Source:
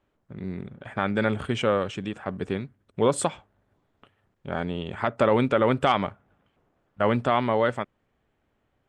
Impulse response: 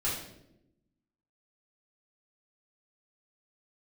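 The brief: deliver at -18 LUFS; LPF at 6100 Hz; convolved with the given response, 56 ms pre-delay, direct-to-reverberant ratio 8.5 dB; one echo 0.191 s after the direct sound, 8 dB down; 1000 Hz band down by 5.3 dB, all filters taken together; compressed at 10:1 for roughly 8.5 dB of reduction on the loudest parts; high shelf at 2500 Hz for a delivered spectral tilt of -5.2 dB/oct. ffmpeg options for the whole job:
-filter_complex "[0:a]lowpass=6.1k,equalizer=f=1k:t=o:g=-5.5,highshelf=f=2.5k:g=-9,acompressor=threshold=-27dB:ratio=10,aecho=1:1:191:0.398,asplit=2[a][b];[1:a]atrim=start_sample=2205,adelay=56[c];[b][c]afir=irnorm=-1:irlink=0,volume=-15.5dB[d];[a][d]amix=inputs=2:normalize=0,volume=15dB"

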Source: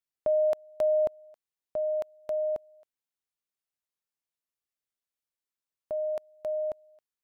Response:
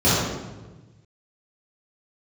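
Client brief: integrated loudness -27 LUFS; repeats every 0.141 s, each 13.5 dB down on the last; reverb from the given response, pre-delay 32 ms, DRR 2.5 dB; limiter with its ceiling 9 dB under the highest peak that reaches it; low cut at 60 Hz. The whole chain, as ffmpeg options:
-filter_complex "[0:a]highpass=60,alimiter=level_in=5dB:limit=-24dB:level=0:latency=1,volume=-5dB,aecho=1:1:141|282:0.211|0.0444,asplit=2[a][b];[1:a]atrim=start_sample=2205,adelay=32[c];[b][c]afir=irnorm=-1:irlink=0,volume=-24dB[d];[a][d]amix=inputs=2:normalize=0,volume=7.5dB"

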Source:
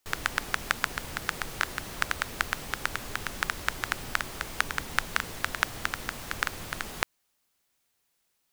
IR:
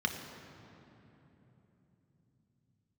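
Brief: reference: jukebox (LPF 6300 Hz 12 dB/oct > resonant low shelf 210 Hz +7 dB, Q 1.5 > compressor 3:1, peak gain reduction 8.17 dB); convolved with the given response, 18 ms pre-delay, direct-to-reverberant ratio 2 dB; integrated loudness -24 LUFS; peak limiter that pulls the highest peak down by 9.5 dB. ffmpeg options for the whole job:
-filter_complex "[0:a]alimiter=limit=-11dB:level=0:latency=1,asplit=2[a][b];[1:a]atrim=start_sample=2205,adelay=18[c];[b][c]afir=irnorm=-1:irlink=0,volume=-8.5dB[d];[a][d]amix=inputs=2:normalize=0,lowpass=6.3k,lowshelf=f=210:t=q:w=1.5:g=7,acompressor=threshold=-34dB:ratio=3,volume=14.5dB"

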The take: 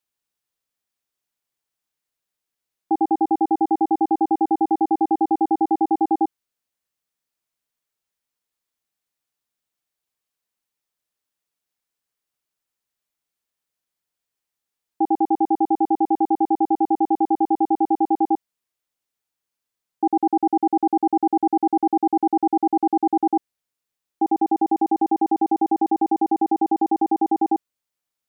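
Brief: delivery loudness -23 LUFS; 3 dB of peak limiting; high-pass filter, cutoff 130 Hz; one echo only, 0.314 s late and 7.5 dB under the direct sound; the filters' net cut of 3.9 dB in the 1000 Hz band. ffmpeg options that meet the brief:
-af "highpass=130,equalizer=f=1k:t=o:g=-5.5,alimiter=limit=-15.5dB:level=0:latency=1,aecho=1:1:314:0.422,volume=2dB"

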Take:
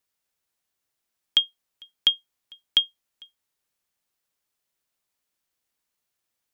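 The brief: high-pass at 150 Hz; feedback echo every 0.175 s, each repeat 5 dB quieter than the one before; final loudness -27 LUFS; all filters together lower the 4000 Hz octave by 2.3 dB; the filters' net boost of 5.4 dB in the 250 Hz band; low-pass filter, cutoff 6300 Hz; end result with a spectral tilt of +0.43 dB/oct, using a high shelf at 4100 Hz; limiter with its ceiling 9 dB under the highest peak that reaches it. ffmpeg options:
-af "highpass=150,lowpass=6.3k,equalizer=f=250:t=o:g=8,equalizer=f=4k:t=o:g=-5.5,highshelf=f=4.1k:g=5,alimiter=limit=-18dB:level=0:latency=1,aecho=1:1:175|350|525|700|875|1050|1225:0.562|0.315|0.176|0.0988|0.0553|0.031|0.0173,volume=5dB"

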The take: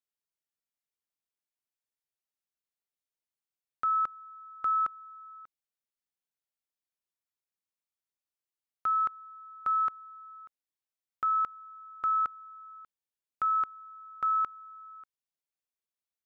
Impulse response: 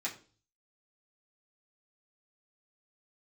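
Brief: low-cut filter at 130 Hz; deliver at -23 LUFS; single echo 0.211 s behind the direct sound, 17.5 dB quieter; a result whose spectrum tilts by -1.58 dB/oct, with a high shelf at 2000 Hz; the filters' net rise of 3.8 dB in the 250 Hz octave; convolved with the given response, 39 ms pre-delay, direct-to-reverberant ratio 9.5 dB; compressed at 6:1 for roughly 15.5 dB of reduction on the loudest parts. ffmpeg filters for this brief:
-filter_complex "[0:a]highpass=130,equalizer=f=250:t=o:g=5.5,highshelf=f=2k:g=-7.5,acompressor=threshold=-45dB:ratio=6,aecho=1:1:211:0.133,asplit=2[a][b];[1:a]atrim=start_sample=2205,adelay=39[c];[b][c]afir=irnorm=-1:irlink=0,volume=-12.5dB[d];[a][d]amix=inputs=2:normalize=0,volume=24.5dB"

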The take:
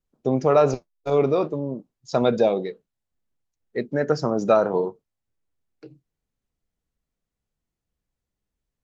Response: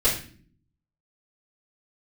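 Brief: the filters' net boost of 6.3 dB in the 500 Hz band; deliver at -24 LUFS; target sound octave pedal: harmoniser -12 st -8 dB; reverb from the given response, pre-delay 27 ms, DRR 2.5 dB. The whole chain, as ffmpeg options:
-filter_complex "[0:a]equalizer=f=500:t=o:g=7.5,asplit=2[a][b];[1:a]atrim=start_sample=2205,adelay=27[c];[b][c]afir=irnorm=-1:irlink=0,volume=-16dB[d];[a][d]amix=inputs=2:normalize=0,asplit=2[e][f];[f]asetrate=22050,aresample=44100,atempo=2,volume=-8dB[g];[e][g]amix=inputs=2:normalize=0,volume=-11.5dB"

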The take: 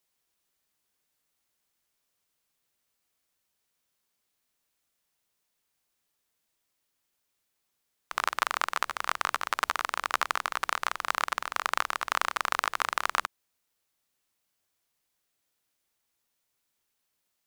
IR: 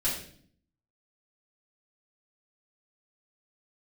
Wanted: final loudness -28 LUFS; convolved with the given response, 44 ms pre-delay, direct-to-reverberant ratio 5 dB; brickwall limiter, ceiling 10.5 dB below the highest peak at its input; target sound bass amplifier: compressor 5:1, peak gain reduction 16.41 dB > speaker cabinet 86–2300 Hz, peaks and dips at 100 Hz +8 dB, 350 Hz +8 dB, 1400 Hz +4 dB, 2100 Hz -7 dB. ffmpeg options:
-filter_complex "[0:a]alimiter=limit=-16dB:level=0:latency=1,asplit=2[a][b];[1:a]atrim=start_sample=2205,adelay=44[c];[b][c]afir=irnorm=-1:irlink=0,volume=-12.5dB[d];[a][d]amix=inputs=2:normalize=0,acompressor=threshold=-47dB:ratio=5,highpass=f=86:w=0.5412,highpass=f=86:w=1.3066,equalizer=f=100:t=q:w=4:g=8,equalizer=f=350:t=q:w=4:g=8,equalizer=f=1.4k:t=q:w=4:g=4,equalizer=f=2.1k:t=q:w=4:g=-7,lowpass=f=2.3k:w=0.5412,lowpass=f=2.3k:w=1.3066,volume=23dB"

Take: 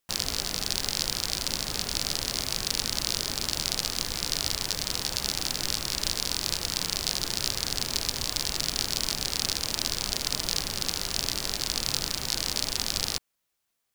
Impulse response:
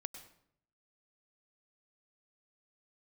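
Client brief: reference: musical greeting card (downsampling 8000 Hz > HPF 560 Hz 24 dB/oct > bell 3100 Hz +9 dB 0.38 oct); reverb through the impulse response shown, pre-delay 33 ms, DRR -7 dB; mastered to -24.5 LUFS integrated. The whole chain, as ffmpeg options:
-filter_complex "[0:a]asplit=2[a][b];[1:a]atrim=start_sample=2205,adelay=33[c];[b][c]afir=irnorm=-1:irlink=0,volume=10dB[d];[a][d]amix=inputs=2:normalize=0,aresample=8000,aresample=44100,highpass=f=560:w=0.5412,highpass=f=560:w=1.3066,equalizer=f=3.1k:t=o:w=0.38:g=9,volume=-0.5dB"

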